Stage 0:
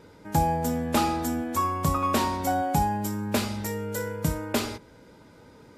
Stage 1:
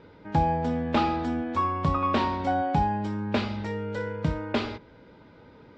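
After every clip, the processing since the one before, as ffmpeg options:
-af "lowpass=f=4k:w=0.5412,lowpass=f=4k:w=1.3066"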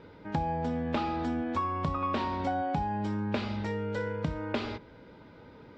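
-af "acompressor=threshold=-28dB:ratio=4"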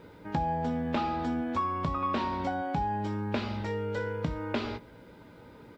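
-filter_complex "[0:a]asplit=2[a][b];[b]adelay=17,volume=-10.5dB[c];[a][c]amix=inputs=2:normalize=0,acrusher=bits=11:mix=0:aa=0.000001"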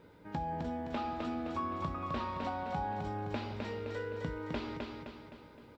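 -af "aecho=1:1:259|518|777|1036|1295|1554:0.668|0.321|0.154|0.0739|0.0355|0.017,volume=-7.5dB"

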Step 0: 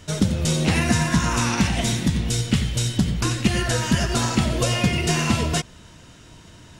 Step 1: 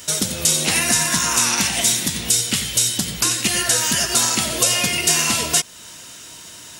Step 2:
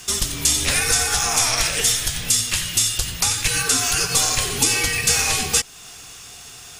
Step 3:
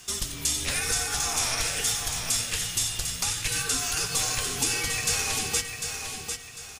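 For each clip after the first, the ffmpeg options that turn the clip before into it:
-filter_complex "[0:a]aemphasis=mode=production:type=riaa,asplit=2[a][b];[b]acompressor=threshold=-28dB:ratio=6,volume=1dB[c];[a][c]amix=inputs=2:normalize=0,volume=-1.5dB"
-af "afreqshift=-230,volume=-1dB"
-af "aecho=1:1:749|1498|2247|2996:0.473|0.156|0.0515|0.017,volume=-8.5dB"

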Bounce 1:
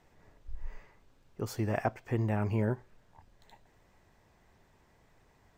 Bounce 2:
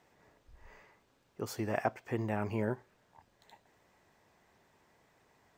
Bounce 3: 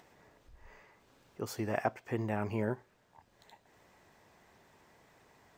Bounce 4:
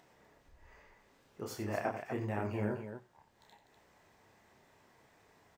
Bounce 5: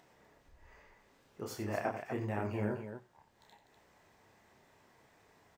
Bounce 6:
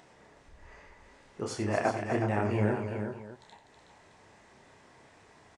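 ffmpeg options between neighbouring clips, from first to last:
-af "highpass=f=240:p=1"
-af "acompressor=mode=upward:threshold=-56dB:ratio=2.5"
-af "aecho=1:1:29.15|90.38|247.8:0.631|0.316|0.398,flanger=delay=7.1:depth=9.1:regen=-71:speed=0.42:shape=triangular"
-af anull
-af "aecho=1:1:370:0.422,aresample=22050,aresample=44100,volume=7dB"

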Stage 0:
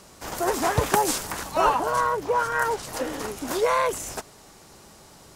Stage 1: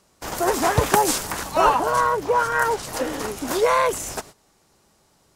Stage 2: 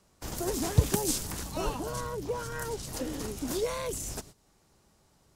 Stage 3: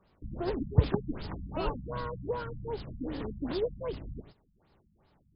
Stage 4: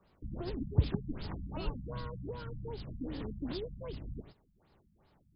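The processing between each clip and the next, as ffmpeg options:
-af "agate=range=-15dB:threshold=-43dB:ratio=16:detection=peak,volume=3.5dB"
-filter_complex "[0:a]acrossover=split=410|3000[a][b][c];[b]acompressor=threshold=-46dB:ratio=2[d];[a][d][c]amix=inputs=3:normalize=0,lowshelf=f=170:g=8.5,volume=-6.5dB"
-af "afftfilt=real='re*lt(b*sr/1024,230*pow(5300/230,0.5+0.5*sin(2*PI*2.6*pts/sr)))':imag='im*lt(b*sr/1024,230*pow(5300/230,0.5+0.5*sin(2*PI*2.6*pts/sr)))':win_size=1024:overlap=0.75"
-filter_complex "[0:a]acrossover=split=270|2600[a][b][c];[b]acompressor=threshold=-43dB:ratio=6[d];[a][d][c]amix=inputs=3:normalize=0,asoftclip=type=tanh:threshold=-14dB,volume=-1dB"

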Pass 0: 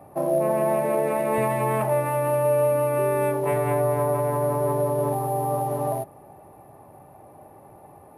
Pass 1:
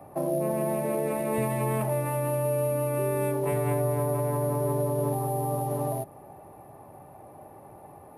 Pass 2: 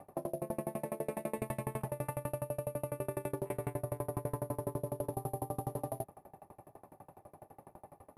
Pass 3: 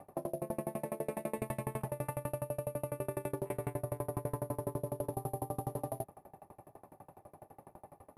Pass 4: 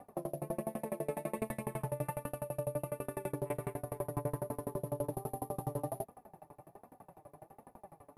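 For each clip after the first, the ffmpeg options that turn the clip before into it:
-filter_complex "[0:a]acrossover=split=400|3000[a][b][c];[b]acompressor=threshold=-32dB:ratio=4[d];[a][d][c]amix=inputs=3:normalize=0"
-af "alimiter=limit=-23dB:level=0:latency=1:release=11,aeval=exprs='val(0)*pow(10,-30*if(lt(mod(12*n/s,1),2*abs(12)/1000),1-mod(12*n/s,1)/(2*abs(12)/1000),(mod(12*n/s,1)-2*abs(12)/1000)/(1-2*abs(12)/1000))/20)':c=same"
-af anull
-af "flanger=delay=4:depth=3:regen=32:speed=1.3:shape=sinusoidal,volume=3.5dB"

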